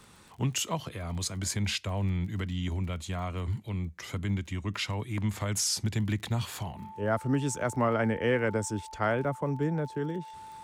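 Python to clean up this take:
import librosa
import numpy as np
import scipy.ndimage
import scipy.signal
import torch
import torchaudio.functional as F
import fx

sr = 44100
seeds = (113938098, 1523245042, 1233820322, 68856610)

y = fx.fix_declick_ar(x, sr, threshold=6.5)
y = fx.notch(y, sr, hz=880.0, q=30.0)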